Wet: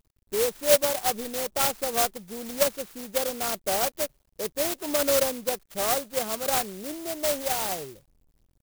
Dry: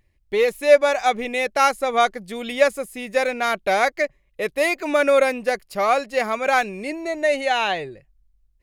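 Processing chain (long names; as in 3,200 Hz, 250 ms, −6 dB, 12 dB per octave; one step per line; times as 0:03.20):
samples in bit-reversed order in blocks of 16 samples
bit reduction 10 bits
converter with an unsteady clock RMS 0.13 ms
level −6 dB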